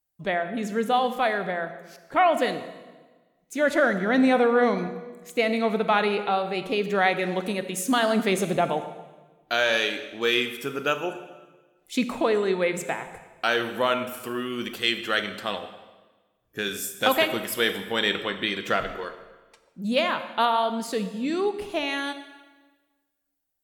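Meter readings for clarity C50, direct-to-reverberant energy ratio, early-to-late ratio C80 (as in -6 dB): 10.5 dB, 10.0 dB, 12.0 dB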